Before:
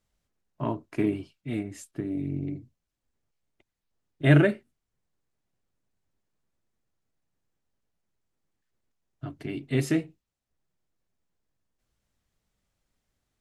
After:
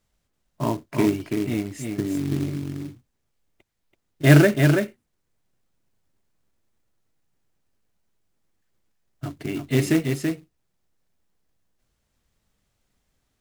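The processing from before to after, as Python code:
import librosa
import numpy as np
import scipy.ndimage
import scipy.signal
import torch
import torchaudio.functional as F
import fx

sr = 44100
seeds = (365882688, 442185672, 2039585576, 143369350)

p1 = x + fx.echo_single(x, sr, ms=332, db=-5.0, dry=0)
p2 = fx.quant_float(p1, sr, bits=2)
y = p2 * librosa.db_to_amplitude(5.0)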